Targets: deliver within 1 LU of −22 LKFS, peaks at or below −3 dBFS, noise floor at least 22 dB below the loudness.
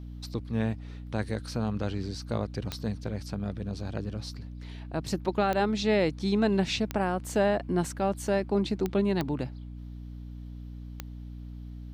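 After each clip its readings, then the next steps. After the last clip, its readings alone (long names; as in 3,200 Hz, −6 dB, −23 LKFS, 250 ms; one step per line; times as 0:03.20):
number of clicks 6; mains hum 60 Hz; hum harmonics up to 300 Hz; level of the hum −38 dBFS; integrated loudness −30.0 LKFS; sample peak −14.0 dBFS; target loudness −22.0 LKFS
→ click removal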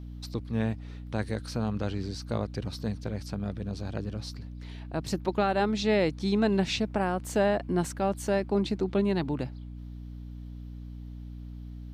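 number of clicks 0; mains hum 60 Hz; hum harmonics up to 300 Hz; level of the hum −38 dBFS
→ mains-hum notches 60/120/180/240/300 Hz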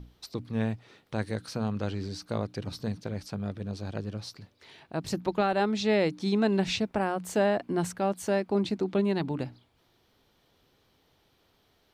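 mains hum none found; integrated loudness −30.0 LKFS; sample peak −14.0 dBFS; target loudness −22.0 LKFS
→ level +8 dB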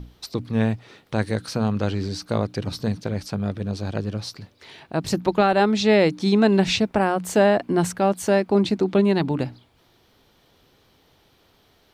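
integrated loudness −22.0 LKFS; sample peak −6.0 dBFS; background noise floor −60 dBFS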